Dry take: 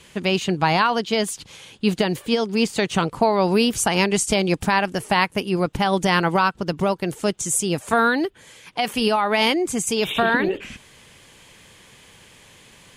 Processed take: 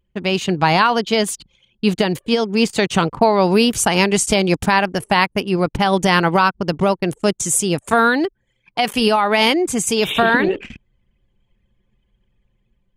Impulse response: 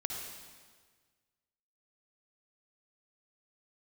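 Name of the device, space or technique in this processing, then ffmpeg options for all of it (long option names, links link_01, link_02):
voice memo with heavy noise removal: -af "anlmdn=3.98,dynaudnorm=framelen=190:gausssize=5:maxgain=5dB,volume=1dB"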